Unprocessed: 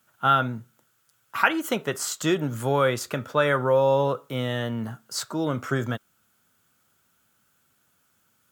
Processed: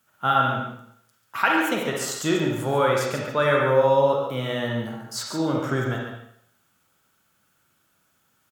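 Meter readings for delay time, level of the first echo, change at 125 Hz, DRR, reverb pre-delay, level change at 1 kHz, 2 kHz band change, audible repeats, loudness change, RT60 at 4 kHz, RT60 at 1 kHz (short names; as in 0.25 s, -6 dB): 0.14 s, -7.0 dB, +0.5 dB, -1.5 dB, 36 ms, +2.0 dB, +2.0 dB, 1, +2.0 dB, 0.65 s, 0.70 s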